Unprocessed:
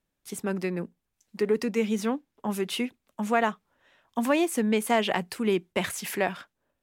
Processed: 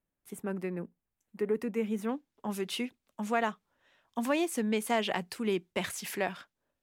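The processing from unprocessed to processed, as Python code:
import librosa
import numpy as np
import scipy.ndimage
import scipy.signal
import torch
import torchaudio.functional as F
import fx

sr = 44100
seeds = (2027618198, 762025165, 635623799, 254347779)

y = fx.peak_eq(x, sr, hz=4900.0, db=fx.steps((0.0, -13.0), (2.09, 2.5)), octaves=1.3)
y = y * 10.0 ** (-5.5 / 20.0)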